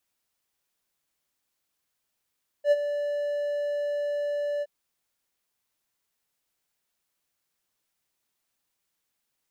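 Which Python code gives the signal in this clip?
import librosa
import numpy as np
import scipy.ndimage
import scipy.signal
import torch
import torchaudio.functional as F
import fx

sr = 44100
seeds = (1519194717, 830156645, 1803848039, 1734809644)

y = fx.adsr_tone(sr, wave='triangle', hz=582.0, attack_ms=75.0, decay_ms=36.0, sustain_db=-11.0, held_s=1.98, release_ms=39.0, level_db=-13.0)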